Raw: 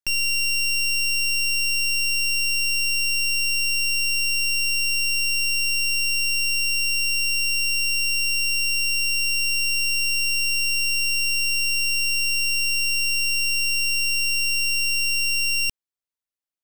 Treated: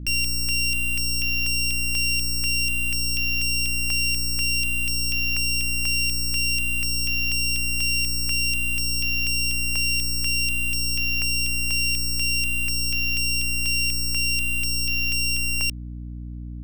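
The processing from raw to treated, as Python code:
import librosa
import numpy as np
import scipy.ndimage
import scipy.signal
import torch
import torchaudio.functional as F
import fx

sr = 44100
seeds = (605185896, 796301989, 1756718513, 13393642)

y = fx.add_hum(x, sr, base_hz=60, snr_db=12)
y = fx.filter_held_notch(y, sr, hz=4.1, low_hz=880.0, high_hz=7900.0)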